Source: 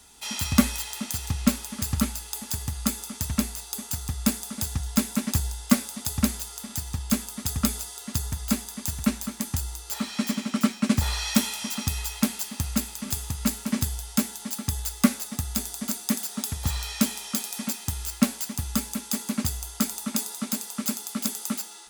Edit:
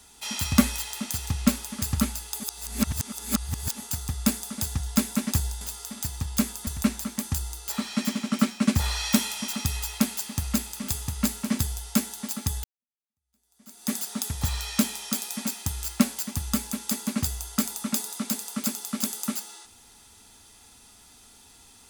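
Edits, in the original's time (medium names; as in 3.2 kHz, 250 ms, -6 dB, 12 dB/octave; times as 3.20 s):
2.40–3.82 s: reverse
5.61–6.34 s: delete
7.40–8.89 s: delete
14.86–16.15 s: fade in exponential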